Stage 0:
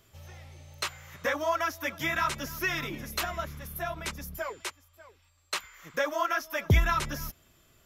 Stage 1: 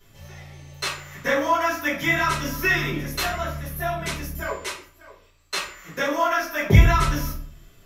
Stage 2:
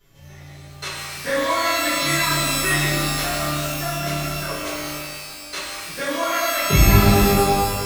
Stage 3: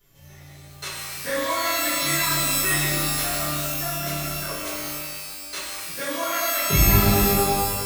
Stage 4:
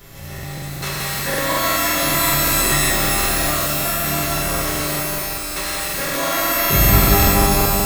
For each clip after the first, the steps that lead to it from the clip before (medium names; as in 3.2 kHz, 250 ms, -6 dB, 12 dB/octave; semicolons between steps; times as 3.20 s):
simulated room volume 49 m³, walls mixed, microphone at 1.9 m; trim -3 dB
pitch-shifted reverb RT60 2.1 s, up +12 st, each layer -2 dB, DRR -2 dB; trim -4.5 dB
treble shelf 8.7 kHz +11.5 dB; trim -4.5 dB
spectral levelling over time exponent 0.6; two-band feedback delay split 1.1 kHz, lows 167 ms, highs 119 ms, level -3 dB; crackling interface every 0.19 s, samples 2048, repeat, from 0.34 s